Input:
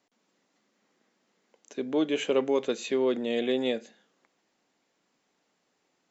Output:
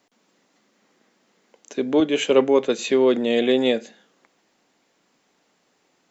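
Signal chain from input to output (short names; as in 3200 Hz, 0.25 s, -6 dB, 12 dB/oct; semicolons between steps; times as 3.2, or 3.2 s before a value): 2–2.79 three-band expander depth 70%; gain +8.5 dB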